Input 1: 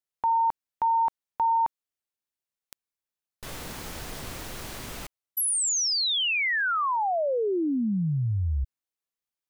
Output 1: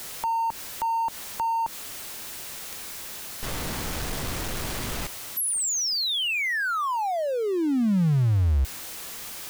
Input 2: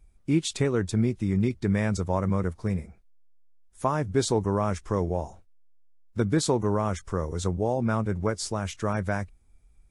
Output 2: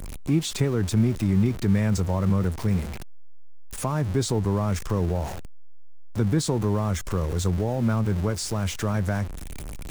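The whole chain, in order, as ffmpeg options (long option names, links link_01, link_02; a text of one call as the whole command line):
ffmpeg -i in.wav -filter_complex "[0:a]aeval=exprs='val(0)+0.5*0.0237*sgn(val(0))':channel_layout=same,acrossover=split=230[link_01][link_02];[link_02]acompressor=threshold=-33dB:ratio=2:attack=1.6:release=159:knee=2.83:detection=peak[link_03];[link_01][link_03]amix=inputs=2:normalize=0,volume=3.5dB" out.wav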